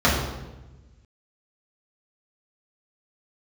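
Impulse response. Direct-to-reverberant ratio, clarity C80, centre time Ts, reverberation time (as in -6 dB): -8.0 dB, 4.5 dB, 57 ms, 1.1 s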